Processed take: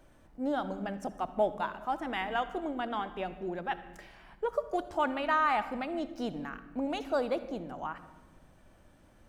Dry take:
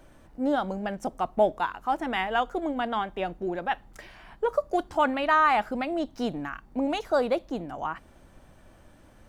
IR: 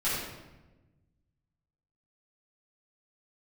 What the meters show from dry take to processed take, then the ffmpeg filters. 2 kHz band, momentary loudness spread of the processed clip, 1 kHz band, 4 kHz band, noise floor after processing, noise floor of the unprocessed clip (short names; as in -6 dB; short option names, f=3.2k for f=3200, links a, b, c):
-6.0 dB, 11 LU, -6.0 dB, -6.0 dB, -60 dBFS, -55 dBFS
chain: -filter_complex "[0:a]asplit=2[a][b];[b]lowshelf=f=130:t=q:w=3:g=-8.5[c];[1:a]atrim=start_sample=2205,adelay=59[d];[c][d]afir=irnorm=-1:irlink=0,volume=-22.5dB[e];[a][e]amix=inputs=2:normalize=0,volume=-6dB"